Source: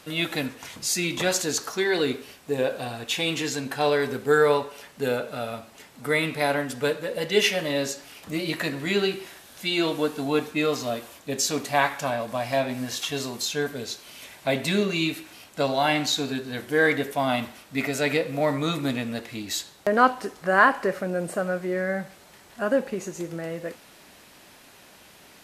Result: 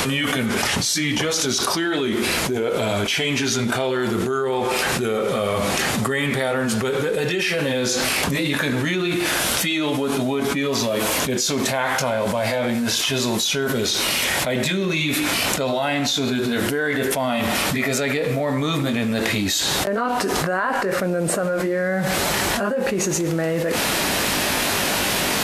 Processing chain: pitch bend over the whole clip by -2.5 st ending unshifted; level flattener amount 100%; trim -6 dB

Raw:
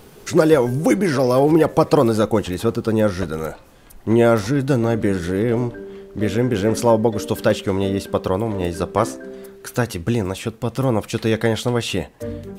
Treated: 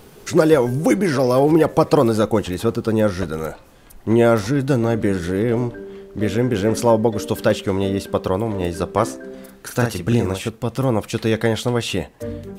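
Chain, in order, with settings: 9.30–10.49 s: doubling 42 ms -4 dB

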